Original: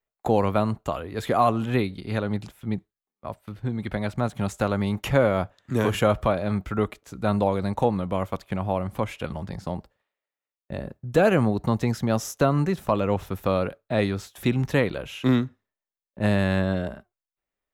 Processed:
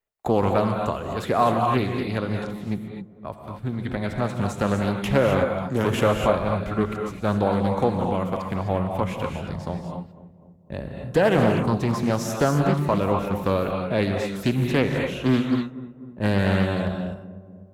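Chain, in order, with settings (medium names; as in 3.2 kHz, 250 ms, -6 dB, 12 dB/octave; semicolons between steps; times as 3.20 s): on a send: filtered feedback delay 250 ms, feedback 62%, low-pass 1 kHz, level -15.5 dB; on the sum: gated-style reverb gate 280 ms rising, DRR 2.5 dB; loudspeaker Doppler distortion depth 0.34 ms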